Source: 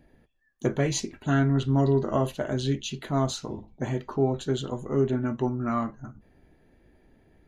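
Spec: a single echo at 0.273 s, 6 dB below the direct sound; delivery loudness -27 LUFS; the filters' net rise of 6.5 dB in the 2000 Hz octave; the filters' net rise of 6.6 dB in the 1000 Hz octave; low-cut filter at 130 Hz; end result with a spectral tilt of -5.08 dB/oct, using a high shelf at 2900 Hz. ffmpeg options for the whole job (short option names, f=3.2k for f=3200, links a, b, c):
-af "highpass=130,equalizer=f=1k:t=o:g=7,equalizer=f=2k:t=o:g=4,highshelf=f=2.9k:g=5,aecho=1:1:273:0.501,volume=-2dB"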